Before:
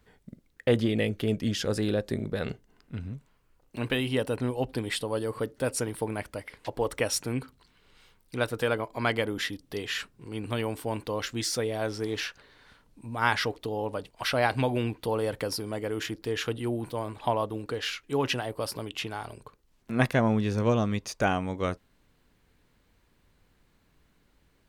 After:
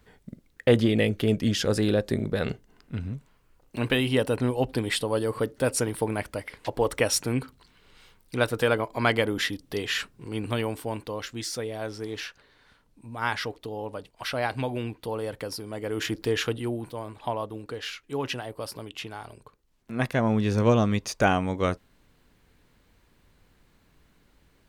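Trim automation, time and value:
10.38 s +4 dB
11.25 s -3 dB
15.69 s -3 dB
16.19 s +6.5 dB
16.95 s -3 dB
20.01 s -3 dB
20.54 s +4 dB

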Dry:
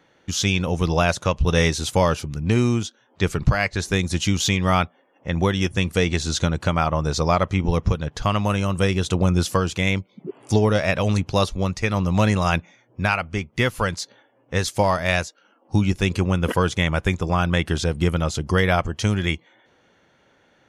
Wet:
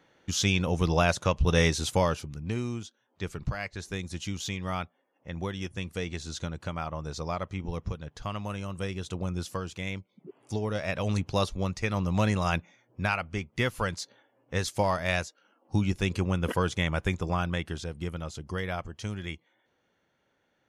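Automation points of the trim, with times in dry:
1.85 s -4.5 dB
2.63 s -13.5 dB
10.59 s -13.5 dB
11.18 s -7 dB
17.29 s -7 dB
17.87 s -14 dB

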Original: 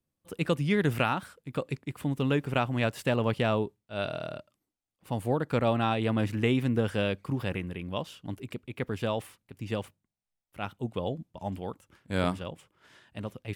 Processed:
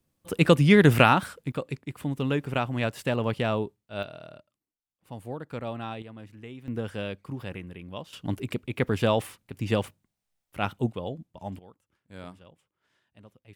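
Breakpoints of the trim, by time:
+9 dB
from 1.52 s 0 dB
from 4.03 s -8.5 dB
from 6.02 s -17 dB
from 6.68 s -5 dB
from 8.13 s +7 dB
from 10.92 s -2 dB
from 11.59 s -15 dB

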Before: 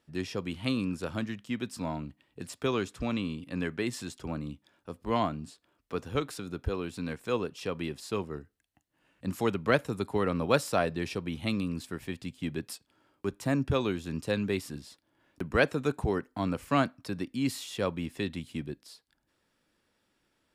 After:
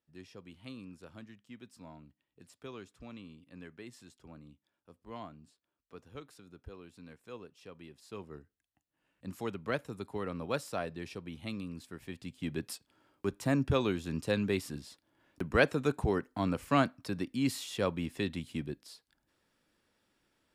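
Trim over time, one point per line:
7.92 s -16.5 dB
8.33 s -9 dB
11.89 s -9 dB
12.63 s -1 dB

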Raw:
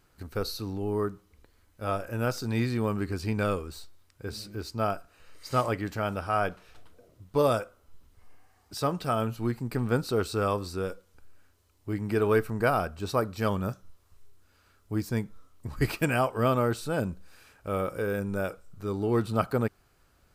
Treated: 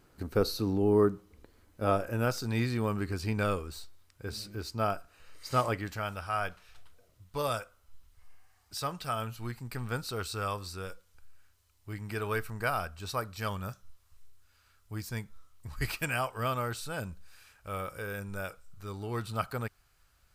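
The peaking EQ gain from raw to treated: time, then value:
peaking EQ 310 Hz 2.7 oct
1.85 s +6 dB
2.37 s -3.5 dB
5.71 s -3.5 dB
6.13 s -13 dB

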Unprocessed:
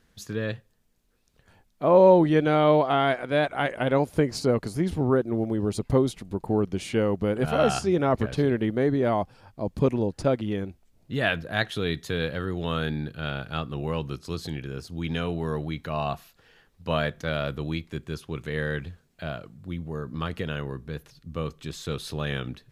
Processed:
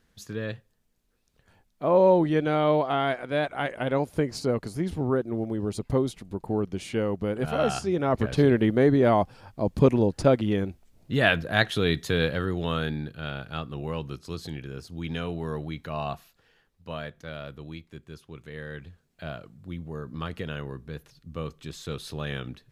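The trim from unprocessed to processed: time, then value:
8.00 s -3 dB
8.43 s +3.5 dB
12.23 s +3.5 dB
13.17 s -3 dB
16.12 s -3 dB
16.95 s -10 dB
18.66 s -10 dB
19.27 s -3 dB

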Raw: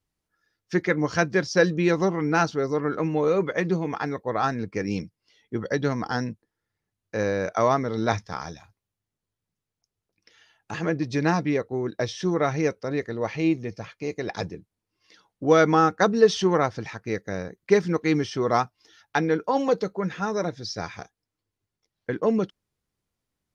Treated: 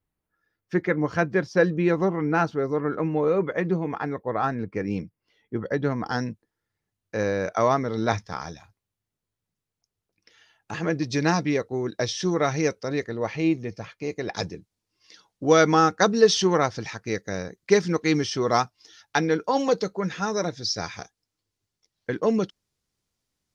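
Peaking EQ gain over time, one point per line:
peaking EQ 5.6 kHz 1.6 oct
-11.5 dB
from 6.06 s 0 dB
from 10.90 s +7 dB
from 13.04 s 0 dB
from 14.36 s +7.5 dB

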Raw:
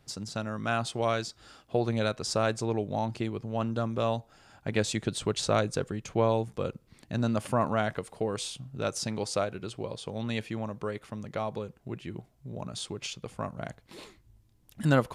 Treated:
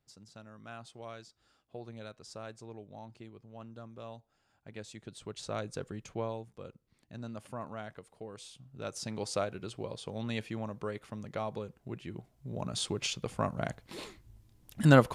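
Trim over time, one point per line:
4.94 s -17.5 dB
6.00 s -6.5 dB
6.44 s -14.5 dB
8.39 s -14.5 dB
9.29 s -3.5 dB
12.17 s -3.5 dB
12.83 s +3 dB

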